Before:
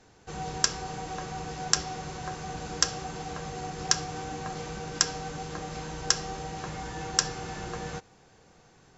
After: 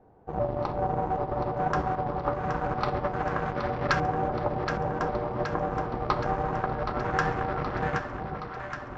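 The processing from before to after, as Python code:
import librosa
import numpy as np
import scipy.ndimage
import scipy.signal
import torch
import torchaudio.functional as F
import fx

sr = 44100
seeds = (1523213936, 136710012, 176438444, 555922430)

p1 = fx.pitch_trill(x, sr, semitones=-4.5, every_ms=391)
p2 = fx.fuzz(p1, sr, gain_db=33.0, gate_db=-35.0)
p3 = p1 + (p2 * 10.0 ** (-9.0 / 20.0))
p4 = fx.filter_lfo_lowpass(p3, sr, shape='saw_up', hz=0.25, low_hz=750.0, high_hz=1700.0, q=1.5)
y = fx.echo_alternate(p4, sr, ms=386, hz=870.0, feedback_pct=80, wet_db=-5.0)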